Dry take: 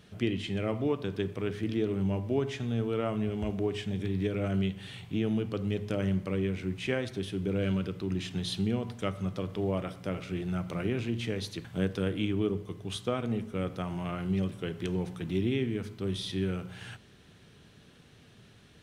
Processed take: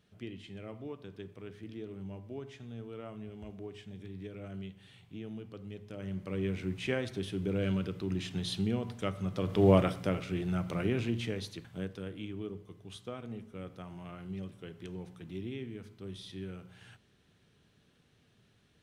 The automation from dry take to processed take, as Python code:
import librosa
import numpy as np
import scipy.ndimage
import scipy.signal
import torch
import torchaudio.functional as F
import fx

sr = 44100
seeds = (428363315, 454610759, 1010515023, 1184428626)

y = fx.gain(x, sr, db=fx.line((5.91, -13.5), (6.49, -2.0), (9.29, -2.0), (9.72, 9.0), (10.25, 0.0), (11.07, 0.0), (12.02, -11.0)))